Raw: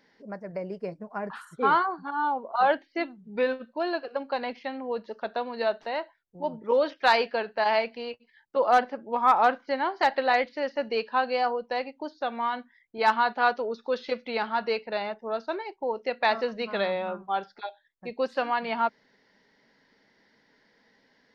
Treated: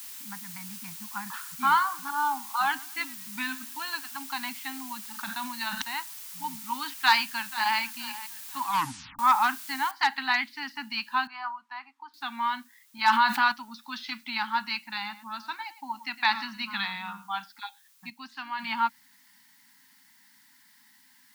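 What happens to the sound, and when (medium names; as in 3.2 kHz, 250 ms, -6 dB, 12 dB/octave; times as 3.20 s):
1.37–4.26 s: modulated delay 108 ms, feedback 36%, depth 105 cents, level -20 dB
5.05–5.82 s: decay stretcher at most 67 dB/s
6.98–7.78 s: echo throw 480 ms, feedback 35%, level -16 dB
8.63 s: tape stop 0.56 s
9.91 s: noise floor step -50 dB -69 dB
11.27–12.14 s: band-pass filter 1.1 kHz, Q 2
13.10–13.52 s: level flattener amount 70%
14.93–17.35 s: delay 108 ms -15.5 dB
18.10–18.59 s: gain -7 dB
whole clip: elliptic band-stop 270–870 Hz, stop band 40 dB; tilt EQ +2 dB/octave; trim +1 dB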